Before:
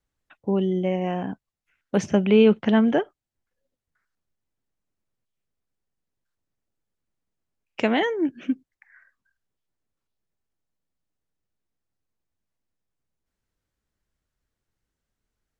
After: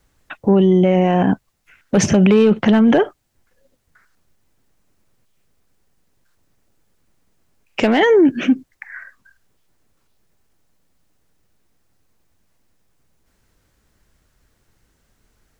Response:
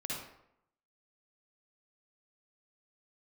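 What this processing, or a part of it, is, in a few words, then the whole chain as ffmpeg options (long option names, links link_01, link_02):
mastering chain: -af "equalizer=frequency=3300:width_type=o:width=0.77:gain=-1.5,acompressor=threshold=-18dB:ratio=2.5,asoftclip=type=tanh:threshold=-12dB,asoftclip=type=hard:threshold=-15.5dB,alimiter=level_in=25.5dB:limit=-1dB:release=50:level=0:latency=1,volume=-5.5dB"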